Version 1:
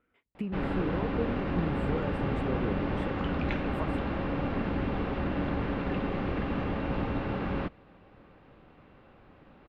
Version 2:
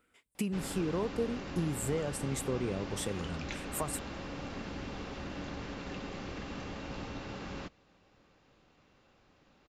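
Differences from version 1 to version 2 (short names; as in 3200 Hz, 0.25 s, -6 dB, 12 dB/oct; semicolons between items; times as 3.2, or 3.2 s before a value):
background -11.5 dB; master: remove air absorption 490 m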